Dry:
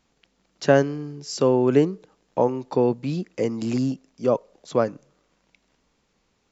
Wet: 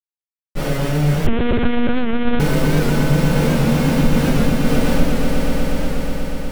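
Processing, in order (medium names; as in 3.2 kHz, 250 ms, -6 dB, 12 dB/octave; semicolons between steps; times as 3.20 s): spectral blur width 184 ms; low-pass 1.2 kHz 6 dB/octave; in parallel at -1 dB: gain riding within 3 dB 0.5 s; on the sum: peak limiter -14.5 dBFS, peak gain reduction 9 dB; 4.27–4.81 s: compression 12:1, threshold -27 dBFS, peak gain reduction 8.5 dB; Schmitt trigger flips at -31.5 dBFS; echo with a slow build-up 121 ms, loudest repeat 5, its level -7 dB; reverberation RT60 0.30 s, pre-delay 3 ms, DRR -9.5 dB; 1.27–2.40 s: monotone LPC vocoder at 8 kHz 240 Hz; warped record 78 rpm, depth 100 cents; trim -7 dB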